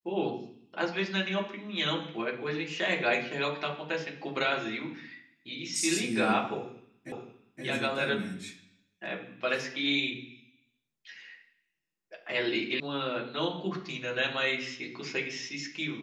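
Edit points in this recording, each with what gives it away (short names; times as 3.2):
7.12 repeat of the last 0.52 s
12.8 sound cut off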